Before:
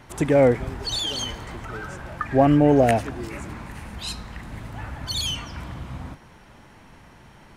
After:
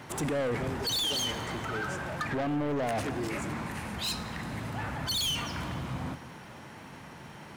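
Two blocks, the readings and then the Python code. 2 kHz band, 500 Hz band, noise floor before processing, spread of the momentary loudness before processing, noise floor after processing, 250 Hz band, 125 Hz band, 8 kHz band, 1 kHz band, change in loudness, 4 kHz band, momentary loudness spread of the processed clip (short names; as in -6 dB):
-2.0 dB, -12.0 dB, -50 dBFS, 20 LU, -47 dBFS, -10.5 dB, -8.5 dB, -1.5 dB, -7.5 dB, -9.5 dB, -2.0 dB, 18 LU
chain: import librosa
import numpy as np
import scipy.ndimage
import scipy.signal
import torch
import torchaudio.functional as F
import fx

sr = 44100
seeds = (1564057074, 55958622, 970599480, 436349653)

p1 = scipy.signal.sosfilt(scipy.signal.butter(2, 110.0, 'highpass', fs=sr, output='sos'), x)
p2 = fx.over_compress(p1, sr, threshold_db=-24.0, ratio=-0.5)
p3 = p1 + (p2 * librosa.db_to_amplitude(3.0))
p4 = 10.0 ** (-20.0 / 20.0) * np.tanh(p3 / 10.0 ** (-20.0 / 20.0))
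p5 = fx.dmg_crackle(p4, sr, seeds[0], per_s=350.0, level_db=-47.0)
p6 = fx.rev_fdn(p5, sr, rt60_s=2.2, lf_ratio=1.0, hf_ratio=1.0, size_ms=38.0, drr_db=13.5)
y = p6 * librosa.db_to_amplitude(-7.5)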